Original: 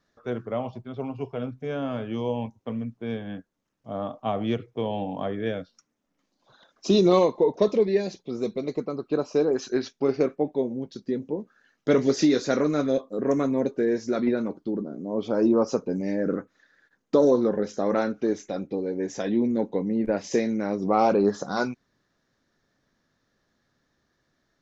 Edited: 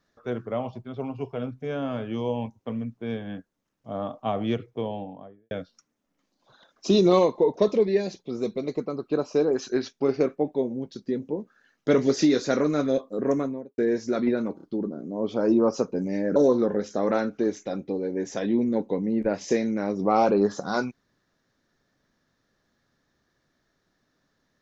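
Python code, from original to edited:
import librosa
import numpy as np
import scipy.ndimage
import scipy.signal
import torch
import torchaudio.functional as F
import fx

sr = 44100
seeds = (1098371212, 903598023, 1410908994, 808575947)

y = fx.studio_fade_out(x, sr, start_s=4.59, length_s=0.92)
y = fx.studio_fade_out(y, sr, start_s=13.24, length_s=0.54)
y = fx.edit(y, sr, fx.stutter(start_s=14.56, slice_s=0.03, count=3),
    fx.cut(start_s=16.3, length_s=0.89), tone=tone)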